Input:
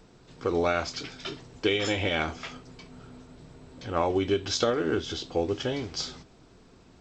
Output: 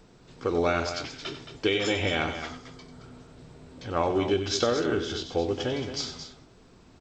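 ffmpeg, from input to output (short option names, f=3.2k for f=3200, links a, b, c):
-filter_complex "[0:a]asettb=1/sr,asplit=3[a][b][c];[a]atrim=end=2.274[d];[b]atrim=start=2.27:end=3.04,asetpts=PTS-STARTPTS,afade=t=in:d=0.004:c=qsin,afade=t=out:st=0.766:d=0.004:c=qsin,equalizer=f=2.6k:t=o:w=0.25:g=-10[e];[c]atrim=start=3.036[f];[d][e]acrossfade=d=0.004:c1=hsin:c2=qsin[g];[g][f]acrossfade=d=0.004:c1=qsin:c2=hsin,aecho=1:1:93.29|221.6:0.282|0.316"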